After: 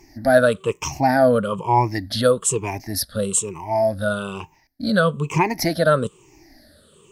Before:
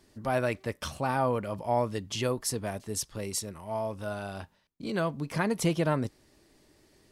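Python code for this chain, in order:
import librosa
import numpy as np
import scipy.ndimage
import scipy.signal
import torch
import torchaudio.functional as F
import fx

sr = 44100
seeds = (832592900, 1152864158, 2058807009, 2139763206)

y = fx.spec_ripple(x, sr, per_octave=0.72, drift_hz=-1.1, depth_db=23)
y = y * 10.0 ** (5.5 / 20.0)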